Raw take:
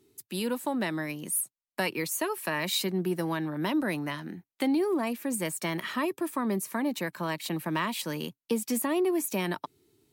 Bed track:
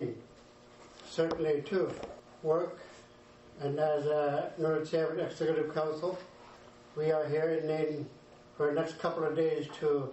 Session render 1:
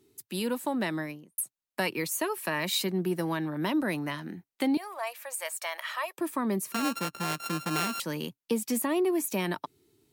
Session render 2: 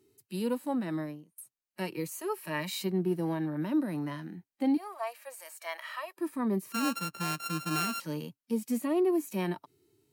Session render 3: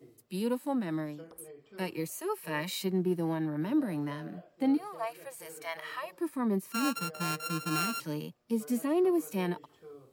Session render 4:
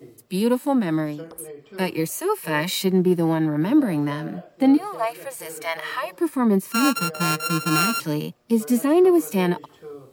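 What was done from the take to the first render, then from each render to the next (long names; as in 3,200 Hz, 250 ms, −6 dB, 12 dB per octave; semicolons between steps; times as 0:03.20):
0:00.95–0:01.38: fade out and dull; 0:04.77–0:06.18: elliptic high-pass filter 590 Hz, stop band 70 dB; 0:06.72–0:08.00: samples sorted by size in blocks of 32 samples
notch filter 3,500 Hz, Q 11; harmonic and percussive parts rebalanced percussive −16 dB
mix in bed track −20 dB
level +11 dB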